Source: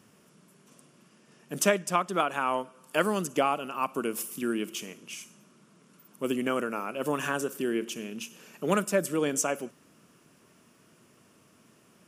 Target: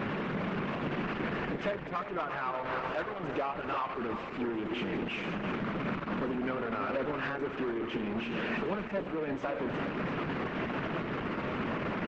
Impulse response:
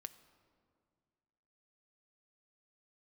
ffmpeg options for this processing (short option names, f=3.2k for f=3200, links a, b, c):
-filter_complex "[0:a]aeval=exprs='val(0)+0.5*0.0794*sgn(val(0))':c=same,highpass=f=83:p=1,agate=range=-8dB:threshold=-20dB:ratio=16:detection=peak,lowpass=f=2.4k:w=0.5412,lowpass=f=2.4k:w=1.3066,asettb=1/sr,asplit=3[a][b][c];[a]atrim=end=1.564[d];[b]atrim=start=1.56:end=4,asetpts=PTS-STARTPTS,afade=t=in:d=0.004:c=qsin,afade=t=out:st=2.436:d=0.004:c=qsin,equalizer=f=220:t=o:w=0.52:g=-12[e];[c]atrim=start=3.996[f];[d][e]acrossfade=d=0.004:c1=hsin:c2=qsin[g];[g][f]acrossfade=d=0.004:c1=qsin:c2=hsin,acompressor=threshold=-36dB:ratio=6,asoftclip=type=tanh:threshold=-30.5dB,aecho=1:1:347|694|1041|1388|1735:0.355|0.153|0.0656|0.0282|0.0121,volume=6.5dB" -ar 48000 -c:a libopus -b:a 10k